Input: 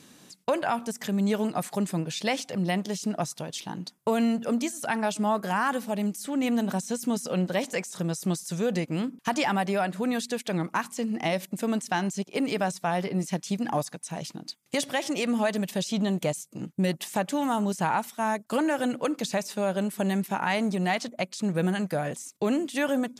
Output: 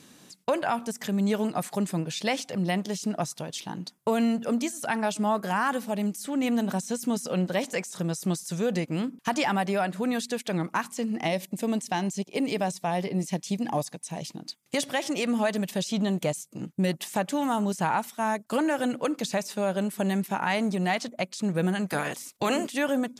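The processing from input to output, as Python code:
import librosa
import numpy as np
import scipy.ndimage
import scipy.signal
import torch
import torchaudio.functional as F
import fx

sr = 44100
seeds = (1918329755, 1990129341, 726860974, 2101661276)

y = fx.peak_eq(x, sr, hz=1400.0, db=-9.0, octaves=0.46, at=(11.27, 14.39))
y = fx.spec_clip(y, sr, under_db=17, at=(21.88, 22.7), fade=0.02)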